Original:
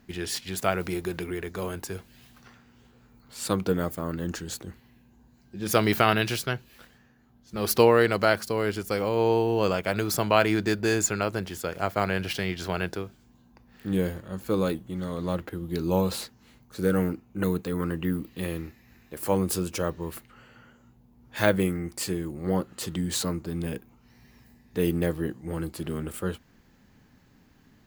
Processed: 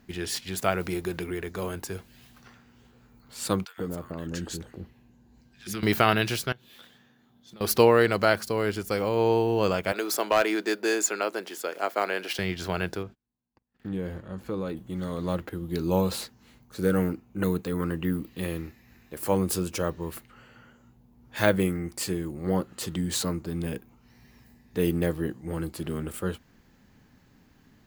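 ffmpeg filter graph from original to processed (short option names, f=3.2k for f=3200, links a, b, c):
-filter_complex "[0:a]asettb=1/sr,asplit=3[a][b][c];[a]atrim=end=3.654[d];[b]atrim=start=3.65:end=5.83,asetpts=PTS-STARTPTS,afade=t=in:d=0.004:c=qsin,afade=t=out:st=2.176:d=0.004:c=qsin,acompressor=threshold=-29dB:ratio=3:attack=3.2:release=140:knee=1:detection=peak,highshelf=f=11k:g=-8,acrossover=split=1200[e][f];[e]adelay=130[g];[g][f]amix=inputs=2:normalize=0,atrim=end_sample=96138[h];[c]atrim=start=5.826[i];[d][h]acrossfade=d=0.004:c1=hsin:c2=qsin[j];[j][i]acrossfade=d=0.004:c1=qsin:c2=hsin,asettb=1/sr,asplit=3[k][l][m];[k]atrim=end=6.524[n];[l]atrim=start=6.52:end=7.61,asetpts=PTS-STARTPTS,afade=t=in:d=0.004:c=qsin,afade=t=out:st=1.086:d=0.004:c=qsin,highpass=130,equalizer=f=3.5k:t=o:w=0.22:g=15,acompressor=threshold=-44dB:ratio=16:attack=3.2:release=140:knee=1:detection=peak[o];[m]atrim=start=7.606[p];[n][o]acrossfade=d=0.004:c1=hsin:c2=qsin[q];[q][p]acrossfade=d=0.004:c1=qsin:c2=hsin,asettb=1/sr,asplit=3[r][s][t];[r]atrim=end=9.924[u];[s]atrim=start=9.92:end=12.39,asetpts=PTS-STARTPTS,afade=t=in:d=0.004:c=qsin,afade=t=out:st=2.466:d=0.004:c=qsin,highpass=f=300:w=0.5412,highpass=f=300:w=1.3066,volume=13.5dB,asoftclip=hard,volume=-13.5dB[v];[t]atrim=start=12.386[w];[u][v]acrossfade=d=0.004:c1=hsin:c2=qsin[x];[x][w]acrossfade=d=0.004:c1=qsin:c2=hsin,asettb=1/sr,asplit=3[y][z][aa];[y]atrim=end=13.034[ab];[z]atrim=start=13.03:end=14.77,asetpts=PTS-STARTPTS,afade=t=in:d=0.004:c=qsin,afade=t=out:st=1.736:d=0.004:c=qsin,acompressor=threshold=-31dB:ratio=2:attack=3.2:release=140:knee=1:detection=peak,agate=range=-30dB:threshold=-53dB:ratio=16:release=100:detection=peak,lowpass=f=2.7k:p=1[ac];[aa]atrim=start=14.766[ad];[ab][ac]acrossfade=d=0.004:c1=hsin:c2=qsin[ae];[ae][ad]acrossfade=d=0.004:c1=qsin:c2=hsin"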